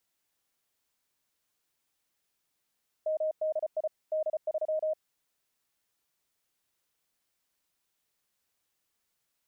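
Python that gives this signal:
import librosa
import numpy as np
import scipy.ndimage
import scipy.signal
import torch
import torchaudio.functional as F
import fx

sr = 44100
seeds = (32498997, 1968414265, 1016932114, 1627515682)

y = fx.morse(sr, text='MDI D3', wpm=34, hz=624.0, level_db=-26.5)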